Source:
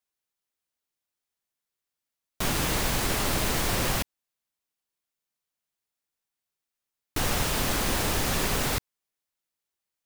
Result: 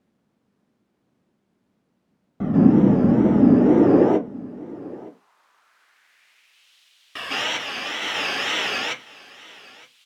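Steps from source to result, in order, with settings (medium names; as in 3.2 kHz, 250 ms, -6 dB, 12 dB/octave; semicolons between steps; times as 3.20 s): 7.43–8.02 s: expander -21 dBFS; reverberation RT60 0.25 s, pre-delay 136 ms, DRR -6.5 dB; in parallel at -8 dB: word length cut 6-bit, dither triangular; on the sum: wow and flutter 150 cents; band-pass sweep 210 Hz -> 3.1 kHz, 3.35–6.75 s; on a send: delay 918 ms -20.5 dB; on the sum: trim -3 dB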